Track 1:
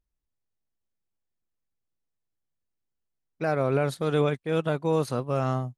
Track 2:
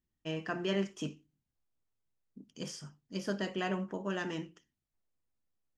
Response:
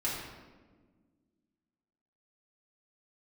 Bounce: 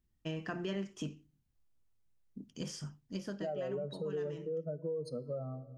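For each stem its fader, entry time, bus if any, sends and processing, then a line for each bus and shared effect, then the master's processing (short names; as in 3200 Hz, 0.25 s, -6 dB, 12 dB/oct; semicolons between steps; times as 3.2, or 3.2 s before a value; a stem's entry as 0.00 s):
-5.0 dB, 0.00 s, send -20.5 dB, spectral contrast raised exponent 2.9; steep high-pass 150 Hz 36 dB/oct
+1.0 dB, 0.00 s, no send, low shelf 160 Hz +10 dB; auto duck -9 dB, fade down 0.30 s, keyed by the first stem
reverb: on, RT60 1.4 s, pre-delay 3 ms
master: compressor 3:1, threshold -37 dBFS, peak gain reduction 10.5 dB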